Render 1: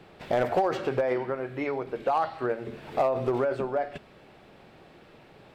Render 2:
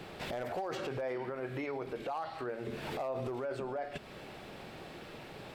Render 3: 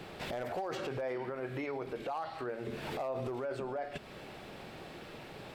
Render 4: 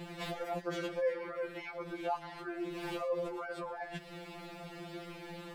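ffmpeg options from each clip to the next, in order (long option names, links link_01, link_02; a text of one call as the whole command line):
ffmpeg -i in.wav -af "highshelf=frequency=3800:gain=7,acompressor=threshold=-40dB:ratio=2.5,alimiter=level_in=10dB:limit=-24dB:level=0:latency=1:release=28,volume=-10dB,volume=4.5dB" out.wav
ffmpeg -i in.wav -af anull out.wav
ffmpeg -i in.wav -af "afftfilt=real='re*2.83*eq(mod(b,8),0)':imag='im*2.83*eq(mod(b,8),0)':win_size=2048:overlap=0.75,volume=3dB" out.wav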